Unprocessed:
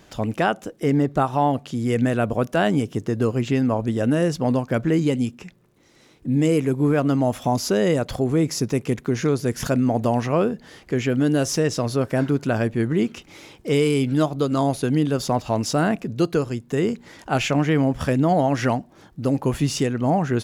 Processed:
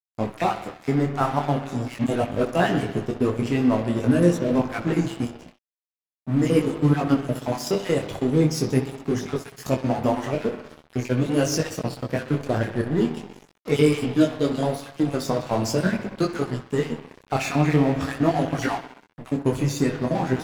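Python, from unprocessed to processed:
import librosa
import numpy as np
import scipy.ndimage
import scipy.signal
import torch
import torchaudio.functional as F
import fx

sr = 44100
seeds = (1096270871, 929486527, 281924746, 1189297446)

p1 = fx.spec_dropout(x, sr, seeds[0], share_pct=38)
p2 = fx.highpass(p1, sr, hz=51.0, slope=6)
p3 = p2 + fx.echo_bbd(p2, sr, ms=63, stages=2048, feedback_pct=78, wet_db=-10.5, dry=0)
p4 = np.sign(p3) * np.maximum(np.abs(p3) - 10.0 ** (-33.0 / 20.0), 0.0)
p5 = fx.detune_double(p4, sr, cents=15)
y = F.gain(torch.from_numpy(p5), 5.0).numpy()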